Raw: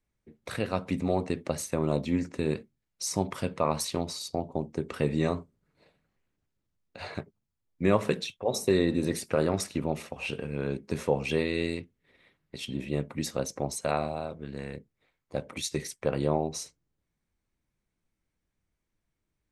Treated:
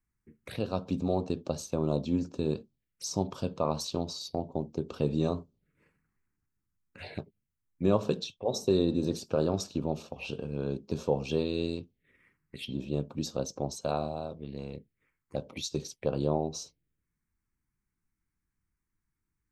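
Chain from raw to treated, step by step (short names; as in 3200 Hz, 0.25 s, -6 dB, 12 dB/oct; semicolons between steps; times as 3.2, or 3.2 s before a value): envelope phaser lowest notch 590 Hz, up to 2000 Hz, full sweep at -32 dBFS; gain -1 dB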